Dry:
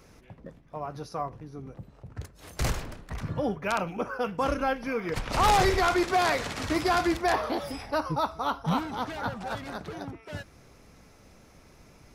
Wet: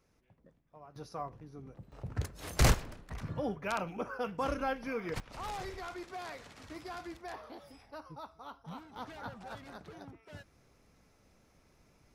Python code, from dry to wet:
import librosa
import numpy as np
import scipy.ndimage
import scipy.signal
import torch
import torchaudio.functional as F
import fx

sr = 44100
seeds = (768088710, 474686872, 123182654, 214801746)

y = fx.gain(x, sr, db=fx.steps((0.0, -18.0), (0.96, -7.5), (1.92, 3.5), (2.74, -6.5), (5.2, -19.0), (8.96, -11.5)))